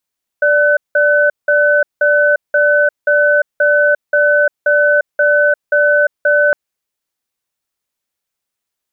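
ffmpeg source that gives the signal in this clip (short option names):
-f lavfi -i "aevalsrc='0.282*(sin(2*PI*587*t)+sin(2*PI*1510*t))*clip(min(mod(t,0.53),0.35-mod(t,0.53))/0.005,0,1)':d=6.11:s=44100"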